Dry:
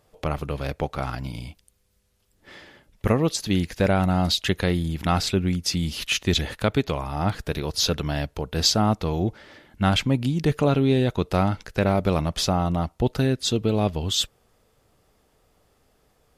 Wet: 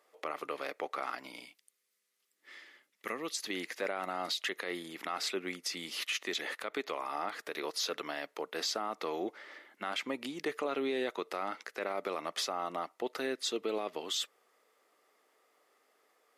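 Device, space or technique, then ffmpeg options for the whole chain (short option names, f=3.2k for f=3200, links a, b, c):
laptop speaker: -filter_complex "[0:a]asettb=1/sr,asplit=3[a][b][c];[a]atrim=end=1.454[d];[b]atrim=start=1.45:end=3.43,asetpts=PTS-STARTPTS,afade=t=in:d=0.004:c=qsin,afade=t=out:st=1.976:d=0.004:c=qsin,equalizer=f=660:t=o:w=2.6:g=-11[e];[c]atrim=start=3.426[f];[d][e]acrossfade=d=0.004:c1=hsin:c2=qsin[g];[g][f]acrossfade=d=0.004:c1=qsin:c2=hsin,highpass=f=330:w=0.5412,highpass=f=330:w=1.3066,equalizer=f=1.2k:t=o:w=0.27:g=7.5,equalizer=f=2k:t=o:w=0.4:g=8.5,alimiter=limit=-17.5dB:level=0:latency=1:release=90,volume=-6.5dB"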